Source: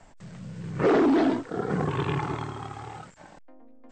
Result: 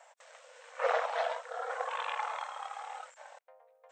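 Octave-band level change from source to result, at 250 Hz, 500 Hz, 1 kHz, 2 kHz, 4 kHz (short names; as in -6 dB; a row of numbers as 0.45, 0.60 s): under -40 dB, -9.5 dB, -2.5 dB, -2.5 dB, -3.0 dB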